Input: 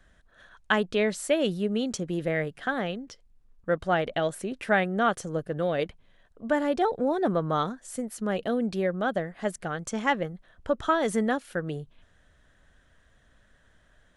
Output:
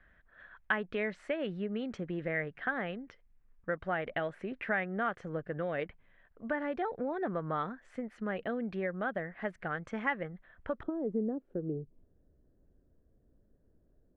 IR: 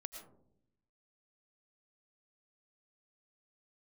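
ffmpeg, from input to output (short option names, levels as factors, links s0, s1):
-af "acompressor=threshold=0.0447:ratio=3,asetnsamples=n=441:p=0,asendcmd='10.83 lowpass f 380',lowpass=f=2000:t=q:w=2.2,volume=0.531"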